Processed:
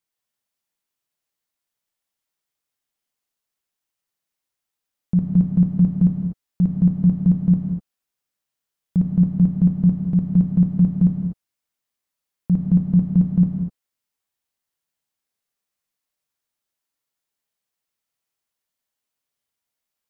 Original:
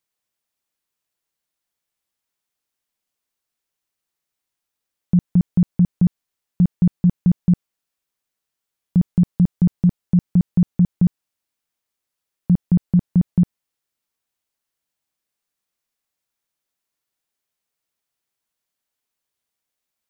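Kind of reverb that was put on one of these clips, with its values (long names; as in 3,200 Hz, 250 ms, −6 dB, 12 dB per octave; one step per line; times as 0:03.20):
reverb whose tail is shaped and stops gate 270 ms flat, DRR 1 dB
level −4 dB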